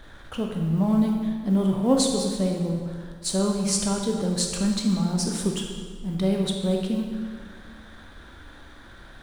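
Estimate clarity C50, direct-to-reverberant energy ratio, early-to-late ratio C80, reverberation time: 3.0 dB, 1.0 dB, 4.5 dB, 1.8 s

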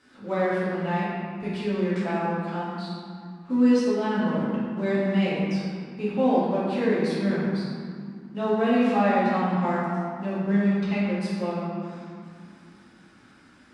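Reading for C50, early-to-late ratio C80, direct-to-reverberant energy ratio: -2.5 dB, -0.5 dB, -10.0 dB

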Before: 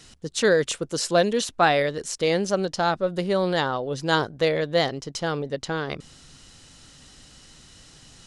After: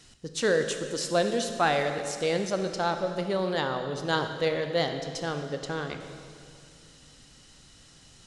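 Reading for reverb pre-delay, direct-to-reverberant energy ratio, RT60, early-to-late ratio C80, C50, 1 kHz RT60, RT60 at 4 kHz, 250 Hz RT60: 22 ms, 6.0 dB, 2.3 s, 8.0 dB, 7.0 dB, 2.2 s, 2.1 s, 2.8 s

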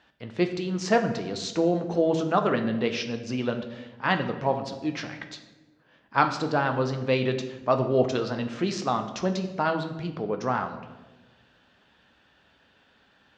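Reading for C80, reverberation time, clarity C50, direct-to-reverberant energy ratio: 12.0 dB, 1.3 s, 10.0 dB, 5.5 dB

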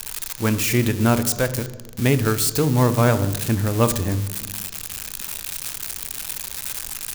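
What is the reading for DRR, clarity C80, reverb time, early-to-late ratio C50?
11.5 dB, 15.5 dB, 1.2 s, 13.5 dB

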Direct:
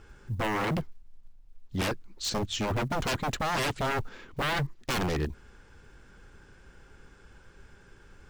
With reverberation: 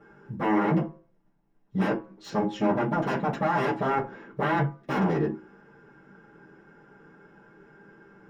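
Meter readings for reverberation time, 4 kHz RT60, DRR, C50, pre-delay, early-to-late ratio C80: 0.40 s, 0.20 s, -7.5 dB, 12.5 dB, 3 ms, 18.0 dB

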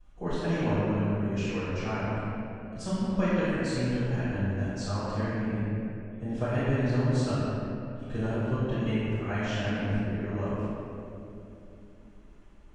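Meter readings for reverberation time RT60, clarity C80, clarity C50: 2.9 s, -3.5 dB, -5.5 dB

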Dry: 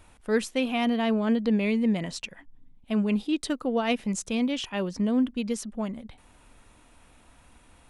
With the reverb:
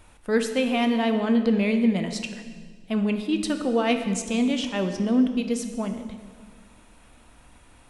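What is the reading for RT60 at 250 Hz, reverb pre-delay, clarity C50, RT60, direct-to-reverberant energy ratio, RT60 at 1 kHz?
2.0 s, 7 ms, 8.5 dB, 1.6 s, 6.5 dB, 1.5 s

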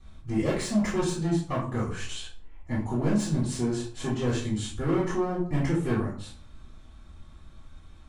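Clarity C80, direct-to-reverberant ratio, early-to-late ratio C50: 10.0 dB, -10.0 dB, 5.5 dB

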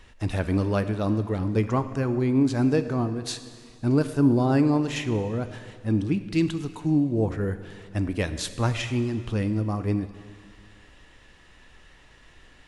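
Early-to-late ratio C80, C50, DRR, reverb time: 13.0 dB, 11.5 dB, 10.5 dB, 2.0 s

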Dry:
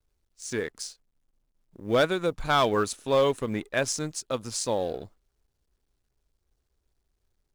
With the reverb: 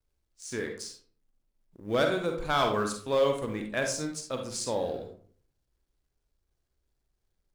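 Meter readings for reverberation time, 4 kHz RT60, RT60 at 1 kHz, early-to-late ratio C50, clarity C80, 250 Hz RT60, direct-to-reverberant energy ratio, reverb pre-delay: 0.45 s, 0.30 s, 0.40 s, 5.5 dB, 10.5 dB, 0.60 s, 3.0 dB, 38 ms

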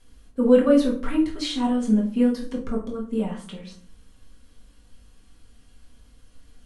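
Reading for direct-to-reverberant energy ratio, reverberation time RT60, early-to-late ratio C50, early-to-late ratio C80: -3.0 dB, 0.45 s, 8.5 dB, 13.5 dB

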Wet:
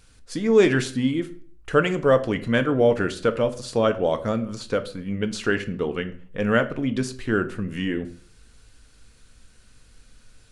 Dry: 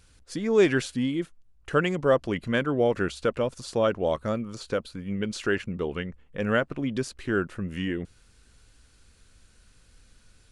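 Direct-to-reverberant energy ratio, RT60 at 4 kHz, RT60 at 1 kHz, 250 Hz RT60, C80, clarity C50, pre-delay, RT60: 8.5 dB, 0.40 s, 0.40 s, 0.55 s, 19.0 dB, 15.0 dB, 4 ms, 0.50 s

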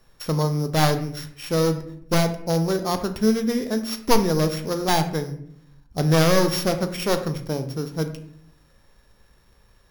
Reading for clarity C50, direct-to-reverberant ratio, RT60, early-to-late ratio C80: 11.0 dB, 7.5 dB, 0.65 s, 14.0 dB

